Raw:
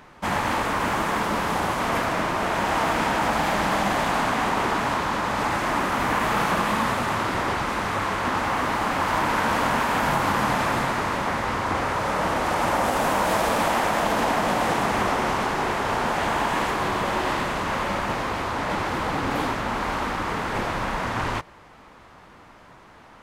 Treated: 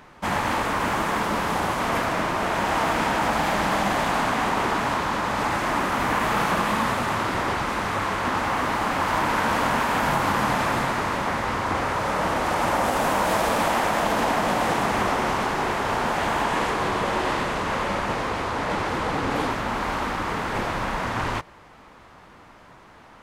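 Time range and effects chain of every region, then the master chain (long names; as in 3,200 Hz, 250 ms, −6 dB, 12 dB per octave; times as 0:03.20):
0:16.44–0:19.51: low-pass filter 12,000 Hz + parametric band 460 Hz +3.5 dB 0.32 octaves
whole clip: no processing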